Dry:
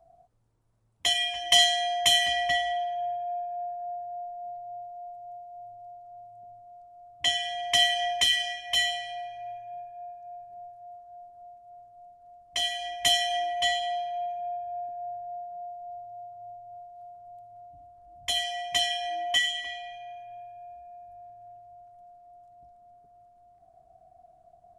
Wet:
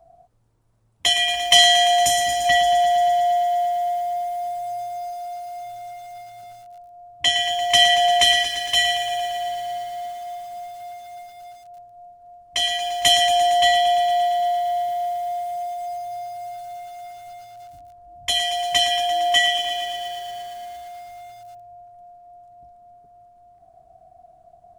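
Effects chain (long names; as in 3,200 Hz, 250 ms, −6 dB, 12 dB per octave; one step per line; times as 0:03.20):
gain on a spectral selection 0:02.05–0:02.46, 430–4,700 Hz −12 dB
feedback echo at a low word length 115 ms, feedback 80%, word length 8 bits, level −9 dB
level +6.5 dB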